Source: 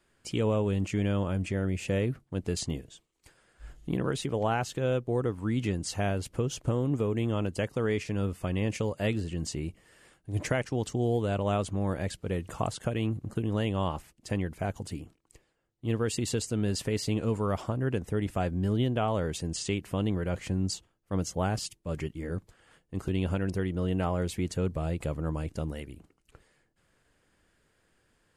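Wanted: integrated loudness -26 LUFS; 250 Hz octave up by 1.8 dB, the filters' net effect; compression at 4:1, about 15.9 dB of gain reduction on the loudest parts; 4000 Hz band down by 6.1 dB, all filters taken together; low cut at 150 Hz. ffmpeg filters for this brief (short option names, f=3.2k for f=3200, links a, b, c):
-af "highpass=150,equalizer=f=250:t=o:g=3.5,equalizer=f=4k:t=o:g=-8.5,acompressor=threshold=-43dB:ratio=4,volume=20dB"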